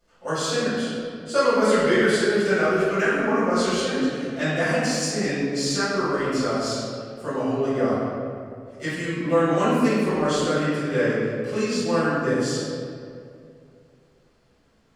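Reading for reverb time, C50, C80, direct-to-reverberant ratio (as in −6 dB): 2.4 s, −3.0 dB, −0.5 dB, −14.5 dB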